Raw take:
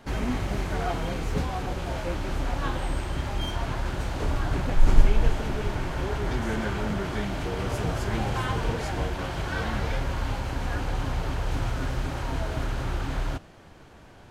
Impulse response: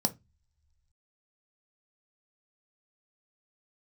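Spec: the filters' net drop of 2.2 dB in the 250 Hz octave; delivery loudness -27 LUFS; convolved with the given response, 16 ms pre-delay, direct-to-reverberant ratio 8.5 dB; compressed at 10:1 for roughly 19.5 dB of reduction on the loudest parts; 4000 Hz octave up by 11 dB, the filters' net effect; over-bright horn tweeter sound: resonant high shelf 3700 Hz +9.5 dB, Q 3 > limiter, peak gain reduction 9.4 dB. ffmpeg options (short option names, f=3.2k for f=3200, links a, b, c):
-filter_complex "[0:a]equalizer=f=250:t=o:g=-3,equalizer=f=4k:t=o:g=4,acompressor=threshold=-28dB:ratio=10,asplit=2[a][b];[1:a]atrim=start_sample=2205,adelay=16[c];[b][c]afir=irnorm=-1:irlink=0,volume=-14dB[d];[a][d]amix=inputs=2:normalize=0,highshelf=f=3.7k:t=q:w=3:g=9.5,volume=7dB,alimiter=limit=-17.5dB:level=0:latency=1"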